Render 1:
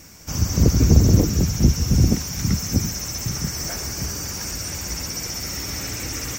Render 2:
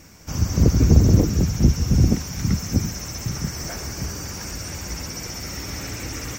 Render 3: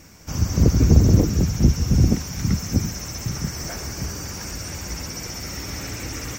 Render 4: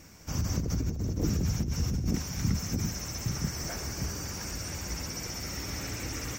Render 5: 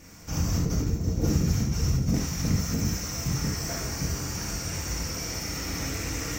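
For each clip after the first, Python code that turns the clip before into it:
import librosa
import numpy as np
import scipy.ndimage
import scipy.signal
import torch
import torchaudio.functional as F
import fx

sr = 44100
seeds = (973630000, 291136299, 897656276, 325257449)

y1 = fx.high_shelf(x, sr, hz=4100.0, db=-7.0)
y2 = y1
y3 = fx.over_compress(y2, sr, threshold_db=-20.0, ratio=-1.0)
y3 = F.gain(torch.from_numpy(y3), -8.0).numpy()
y4 = np.minimum(y3, 2.0 * 10.0 ** (-22.5 / 20.0) - y3)
y4 = fx.rev_gated(y4, sr, seeds[0], gate_ms=110, shape='flat', drr_db=-2.5)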